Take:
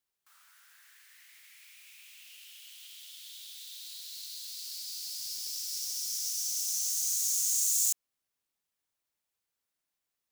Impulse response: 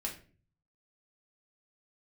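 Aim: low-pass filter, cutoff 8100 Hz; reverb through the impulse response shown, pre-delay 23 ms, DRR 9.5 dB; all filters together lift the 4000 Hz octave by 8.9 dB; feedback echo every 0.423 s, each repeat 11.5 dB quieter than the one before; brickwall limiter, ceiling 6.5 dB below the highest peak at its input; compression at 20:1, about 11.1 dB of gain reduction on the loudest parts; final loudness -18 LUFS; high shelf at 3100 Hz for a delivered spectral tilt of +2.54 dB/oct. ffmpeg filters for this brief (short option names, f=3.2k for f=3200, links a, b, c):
-filter_complex "[0:a]lowpass=8.1k,highshelf=f=3.1k:g=6.5,equalizer=f=4k:t=o:g=6.5,acompressor=threshold=-31dB:ratio=20,alimiter=level_in=4.5dB:limit=-24dB:level=0:latency=1,volume=-4.5dB,aecho=1:1:423|846|1269:0.266|0.0718|0.0194,asplit=2[a][b];[1:a]atrim=start_sample=2205,adelay=23[c];[b][c]afir=irnorm=-1:irlink=0,volume=-10.5dB[d];[a][d]amix=inputs=2:normalize=0,volume=17.5dB"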